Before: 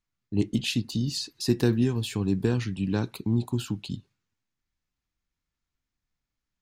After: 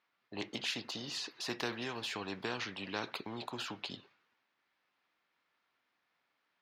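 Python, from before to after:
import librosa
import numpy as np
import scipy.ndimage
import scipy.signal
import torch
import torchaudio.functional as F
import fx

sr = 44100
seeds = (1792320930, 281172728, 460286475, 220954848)

y = scipy.signal.sosfilt(scipy.signal.butter(2, 570.0, 'highpass', fs=sr, output='sos'), x)
y = fx.air_absorb(y, sr, metres=300.0)
y = fx.spectral_comp(y, sr, ratio=2.0)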